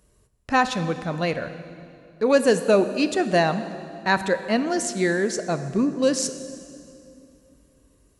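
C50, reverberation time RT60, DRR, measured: 11.5 dB, 2.6 s, 10.5 dB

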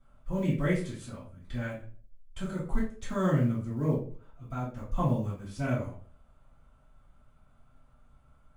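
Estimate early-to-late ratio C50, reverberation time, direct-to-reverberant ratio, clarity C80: 5.5 dB, 0.45 s, −10.0 dB, 10.5 dB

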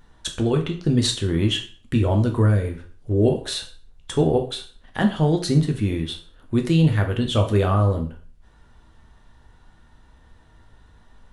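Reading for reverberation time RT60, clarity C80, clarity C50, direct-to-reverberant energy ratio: 0.40 s, 15.0 dB, 10.0 dB, 3.0 dB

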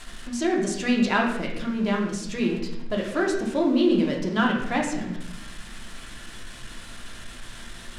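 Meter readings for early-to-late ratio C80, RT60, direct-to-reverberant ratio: 7.0 dB, 0.90 s, −1.0 dB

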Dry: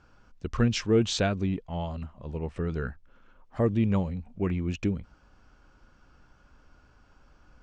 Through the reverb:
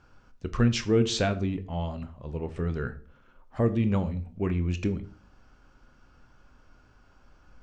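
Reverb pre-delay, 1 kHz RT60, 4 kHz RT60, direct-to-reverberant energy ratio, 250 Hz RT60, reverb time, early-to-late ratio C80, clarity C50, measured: 8 ms, 0.40 s, 0.35 s, 10.0 dB, 0.60 s, 0.45 s, 20.0 dB, 16.5 dB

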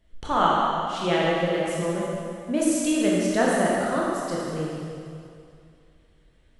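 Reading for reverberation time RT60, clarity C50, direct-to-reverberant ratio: 2.4 s, −3.0 dB, −5.5 dB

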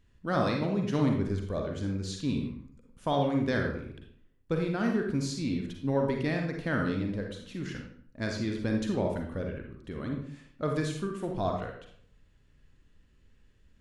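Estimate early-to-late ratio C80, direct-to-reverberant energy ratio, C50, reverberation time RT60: 7.5 dB, 1.5 dB, 3.5 dB, 0.60 s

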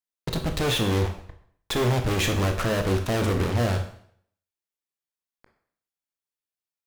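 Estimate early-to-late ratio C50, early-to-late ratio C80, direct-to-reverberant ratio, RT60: 9.0 dB, 12.5 dB, 5.0 dB, 0.60 s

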